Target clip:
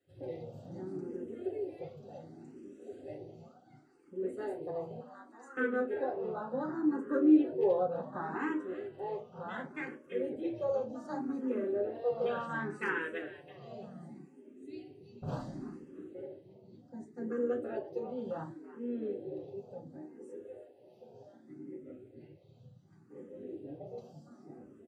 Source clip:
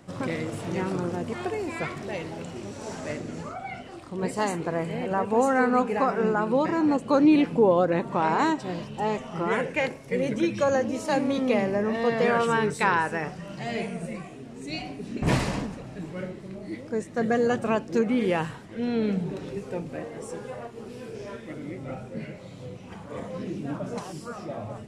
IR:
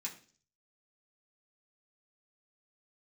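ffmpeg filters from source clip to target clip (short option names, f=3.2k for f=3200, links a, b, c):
-filter_complex "[0:a]afwtdn=0.0447,asoftclip=type=hard:threshold=-11dB,asettb=1/sr,asplit=3[a][b][c];[a]atrim=end=5.004[d];[b]atrim=start=5:end=5.57,asetpts=PTS-STARTPTS,afade=t=in:d=0.004:c=qsin,afade=t=out:st=0.566:d=0.004:c=qsin,bandpass=f=5.5k:t=q:w=0.73:csg=0[e];[c]atrim=start=5.566[f];[d][e]acrossfade=d=0.004:c1=hsin:c2=qsin[g];[g][f]acrossfade=d=0.004:c1=qsin:c2=hsin,asplit=4[h][i][j][k];[i]adelay=332,afreqshift=86,volume=-14.5dB[l];[j]adelay=664,afreqshift=172,volume=-23.4dB[m];[k]adelay=996,afreqshift=258,volume=-32.2dB[n];[h][l][m][n]amix=inputs=4:normalize=0[o];[1:a]atrim=start_sample=2205,asetrate=79380,aresample=44100[p];[o][p]afir=irnorm=-1:irlink=0,asplit=2[q][r];[r]afreqshift=0.68[s];[q][s]amix=inputs=2:normalize=1"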